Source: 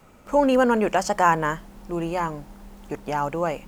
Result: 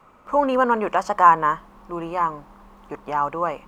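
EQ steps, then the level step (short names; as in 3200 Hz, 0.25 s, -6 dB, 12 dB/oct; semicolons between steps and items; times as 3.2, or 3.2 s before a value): tone controls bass -5 dB, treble -9 dB; bell 1100 Hz +12.5 dB 0.46 oct; -2.0 dB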